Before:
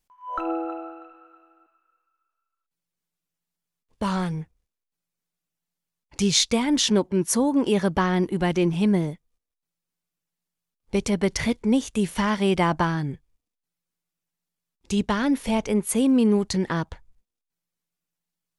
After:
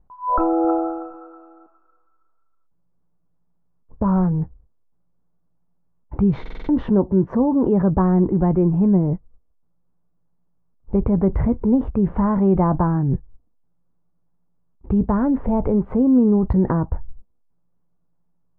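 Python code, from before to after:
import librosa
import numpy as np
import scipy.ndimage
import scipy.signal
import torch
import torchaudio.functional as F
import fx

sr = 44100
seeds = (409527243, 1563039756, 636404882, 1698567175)

p1 = scipy.signal.sosfilt(scipy.signal.butter(4, 1100.0, 'lowpass', fs=sr, output='sos'), x)
p2 = fx.low_shelf(p1, sr, hz=150.0, db=11.0)
p3 = fx.over_compress(p2, sr, threshold_db=-30.0, ratio=-1.0)
p4 = p2 + (p3 * librosa.db_to_amplitude(1.5))
p5 = fx.doubler(p4, sr, ms=16.0, db=-14)
y = fx.buffer_glitch(p5, sr, at_s=(6.41,), block=2048, repeats=5)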